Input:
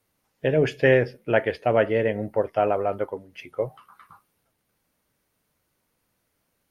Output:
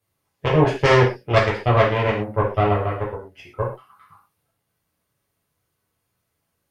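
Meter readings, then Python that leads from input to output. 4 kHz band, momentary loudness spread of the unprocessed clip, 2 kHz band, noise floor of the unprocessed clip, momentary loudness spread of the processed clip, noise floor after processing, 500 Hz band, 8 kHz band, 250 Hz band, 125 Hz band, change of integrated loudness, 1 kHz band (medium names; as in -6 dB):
+9.0 dB, 12 LU, +3.5 dB, -75 dBFS, 13 LU, -76 dBFS, +1.5 dB, no reading, +3.5 dB, +10.0 dB, +3.5 dB, +7.5 dB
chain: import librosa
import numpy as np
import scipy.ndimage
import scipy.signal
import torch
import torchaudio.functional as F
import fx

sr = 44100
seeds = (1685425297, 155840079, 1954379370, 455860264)

y = fx.cheby_harmonics(x, sr, harmonics=(4, 7), levels_db=(-9, -27), full_scale_db=-5.5)
y = fx.rev_gated(y, sr, seeds[0], gate_ms=150, shape='falling', drr_db=-5.0)
y = y * librosa.db_to_amplitude(-4.5)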